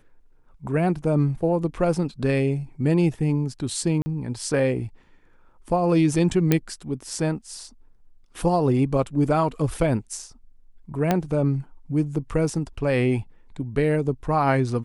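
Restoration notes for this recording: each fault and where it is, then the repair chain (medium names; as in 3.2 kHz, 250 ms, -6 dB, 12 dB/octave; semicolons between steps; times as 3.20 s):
4.02–4.06 s: dropout 40 ms
6.52 s: pop -5 dBFS
11.11 s: pop -7 dBFS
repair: de-click; interpolate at 4.02 s, 40 ms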